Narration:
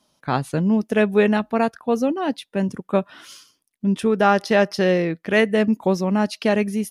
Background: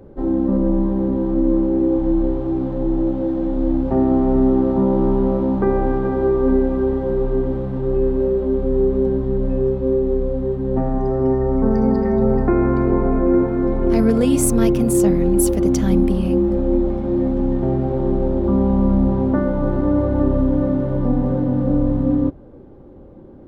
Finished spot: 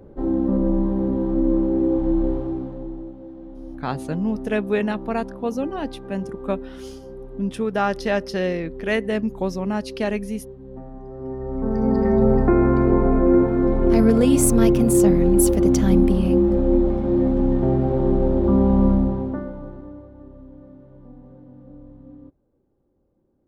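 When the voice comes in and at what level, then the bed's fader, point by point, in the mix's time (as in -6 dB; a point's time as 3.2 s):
3.55 s, -5.0 dB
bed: 2.36 s -2.5 dB
3.15 s -18 dB
11.06 s -18 dB
12.05 s 0 dB
18.87 s 0 dB
20.13 s -26 dB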